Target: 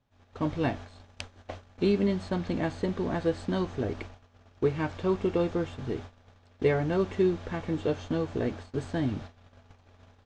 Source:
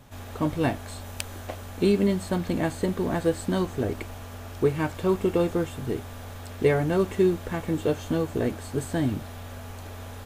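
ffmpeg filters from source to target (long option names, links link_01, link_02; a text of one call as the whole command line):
ffmpeg -i in.wav -af "lowpass=frequency=5900:width=0.5412,lowpass=frequency=5900:width=1.3066,agate=range=-20dB:threshold=-36dB:ratio=16:detection=peak,volume=-3.5dB" out.wav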